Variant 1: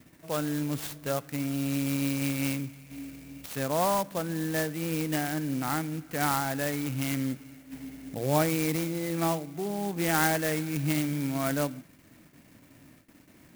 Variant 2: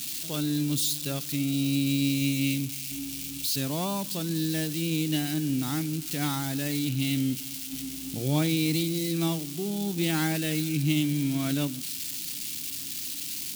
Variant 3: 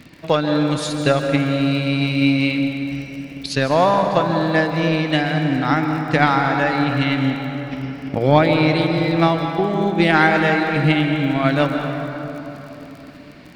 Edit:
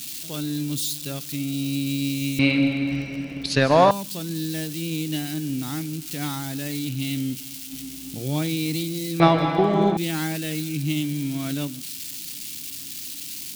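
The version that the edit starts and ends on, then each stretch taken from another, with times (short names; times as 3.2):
2
2.39–3.91 from 3
9.2–9.97 from 3
not used: 1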